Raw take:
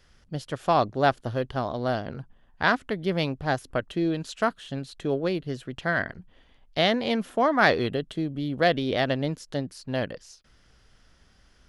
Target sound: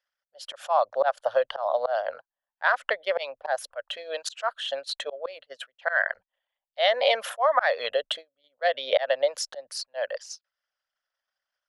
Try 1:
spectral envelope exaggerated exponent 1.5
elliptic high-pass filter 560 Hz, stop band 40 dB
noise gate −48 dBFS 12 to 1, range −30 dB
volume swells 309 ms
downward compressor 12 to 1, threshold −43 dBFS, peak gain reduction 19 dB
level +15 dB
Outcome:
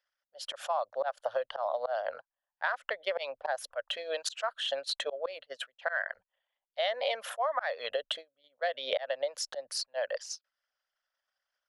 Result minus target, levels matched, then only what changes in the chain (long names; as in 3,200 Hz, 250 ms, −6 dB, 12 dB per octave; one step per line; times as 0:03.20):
downward compressor: peak gain reduction +10 dB
change: downward compressor 12 to 1, threshold −32 dBFS, peak gain reduction 9 dB